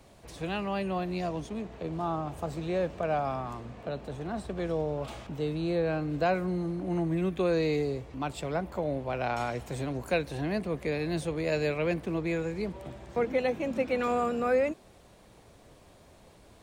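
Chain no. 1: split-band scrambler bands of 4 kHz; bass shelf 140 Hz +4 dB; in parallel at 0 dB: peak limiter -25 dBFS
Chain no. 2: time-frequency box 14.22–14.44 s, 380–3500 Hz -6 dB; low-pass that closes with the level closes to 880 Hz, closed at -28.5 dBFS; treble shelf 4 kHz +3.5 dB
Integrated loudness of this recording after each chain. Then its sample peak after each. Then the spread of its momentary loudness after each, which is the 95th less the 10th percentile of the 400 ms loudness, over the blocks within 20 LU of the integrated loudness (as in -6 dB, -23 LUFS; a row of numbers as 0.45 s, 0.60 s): -23.0 LUFS, -32.0 LUFS; -12.5 dBFS, -17.5 dBFS; 7 LU, 9 LU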